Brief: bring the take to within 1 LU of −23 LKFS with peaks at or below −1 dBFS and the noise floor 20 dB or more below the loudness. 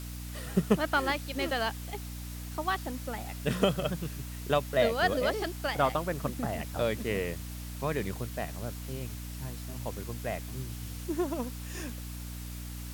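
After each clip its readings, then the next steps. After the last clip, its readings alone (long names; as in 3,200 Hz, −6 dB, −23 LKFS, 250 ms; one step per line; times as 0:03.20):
mains hum 60 Hz; hum harmonics up to 300 Hz; level of the hum −38 dBFS; background noise floor −40 dBFS; target noise floor −53 dBFS; integrated loudness −33.0 LKFS; sample peak −12.0 dBFS; target loudness −23.0 LKFS
→ hum removal 60 Hz, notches 5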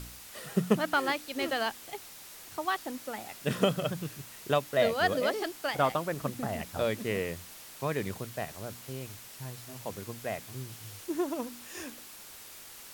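mains hum none found; background noise floor −49 dBFS; target noise floor −53 dBFS
→ broadband denoise 6 dB, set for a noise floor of −49 dBFS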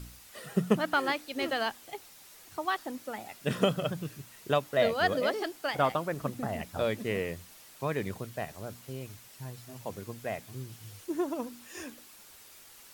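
background noise floor −54 dBFS; integrated loudness −32.5 LKFS; sample peak −12.5 dBFS; target loudness −23.0 LKFS
→ level +9.5 dB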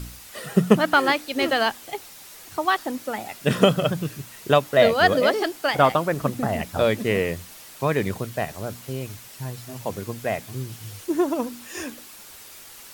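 integrated loudness −23.0 LKFS; sample peak −3.0 dBFS; background noise floor −44 dBFS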